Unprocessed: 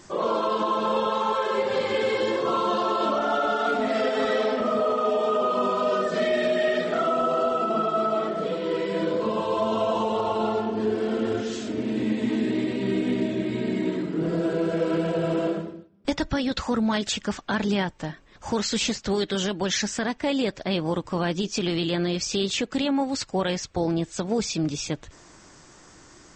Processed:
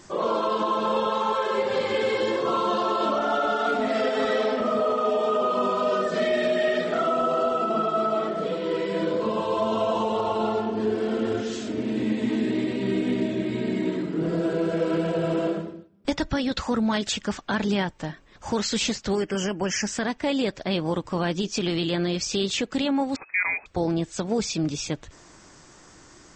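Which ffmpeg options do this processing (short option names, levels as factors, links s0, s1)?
-filter_complex "[0:a]asettb=1/sr,asplit=3[s0][s1][s2];[s0]atrim=end=19.154[s3];[s1]atrim=start=19.15:end=19.87,asetpts=PTS-STARTPTS,afade=t=in:d=0.004:c=qsin,afade=t=out:st=0.716:d=0.004:c=qsin,asuperstop=centerf=3800:order=8:qfactor=2.3[s4];[s2]atrim=start=19.866[s5];[s3][s4]acrossfade=d=0.004:c1=hsin:c2=qsin[s6];[s6][s5]acrossfade=d=0.004:c1=qsin:c2=hsin,asettb=1/sr,asplit=3[s7][s8][s9];[s7]atrim=end=23.164[s10];[s8]atrim=start=23.16:end=23.66,asetpts=PTS-STARTPTS,afade=t=in:d=0.004:c=qsin,afade=t=out:st=0.496:d=0.004:c=qsin,lowpass=f=2200:t=q:w=0.5098,lowpass=f=2200:t=q:w=0.6013,lowpass=f=2200:t=q:w=0.9,lowpass=f=2200:t=q:w=2.563,afreqshift=-2600[s11];[s9]atrim=start=23.656[s12];[s10][s11]acrossfade=d=0.004:c1=hsin:c2=qsin[s13];[s13][s12]acrossfade=d=0.004:c1=qsin:c2=hsin"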